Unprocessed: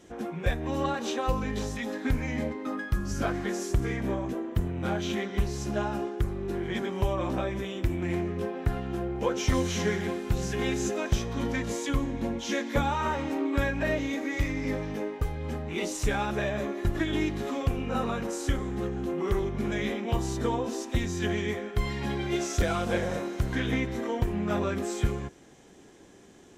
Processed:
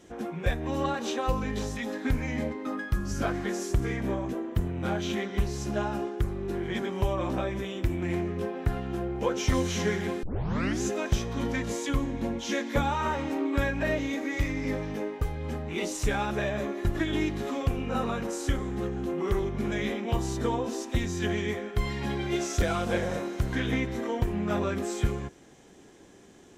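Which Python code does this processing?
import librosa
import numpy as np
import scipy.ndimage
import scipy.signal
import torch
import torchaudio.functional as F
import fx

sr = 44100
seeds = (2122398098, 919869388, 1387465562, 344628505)

y = fx.edit(x, sr, fx.tape_start(start_s=10.23, length_s=0.59), tone=tone)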